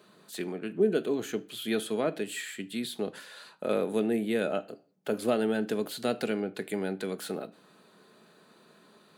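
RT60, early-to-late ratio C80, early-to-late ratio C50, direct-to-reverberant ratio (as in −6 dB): 0.45 s, 26.0 dB, 21.5 dB, 10.5 dB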